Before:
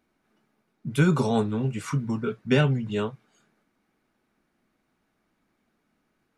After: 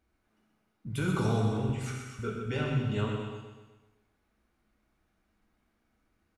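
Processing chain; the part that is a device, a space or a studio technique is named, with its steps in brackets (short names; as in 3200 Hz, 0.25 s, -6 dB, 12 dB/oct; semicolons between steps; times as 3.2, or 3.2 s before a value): 1.69–2.19 elliptic high-pass 1300 Hz; car stereo with a boomy subwoofer (resonant low shelf 110 Hz +10 dB, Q 1.5; limiter -16.5 dBFS, peak gain reduction 8 dB); feedback echo 0.126 s, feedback 50%, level -8 dB; non-linear reverb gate 0.41 s falling, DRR 0.5 dB; gain -6.5 dB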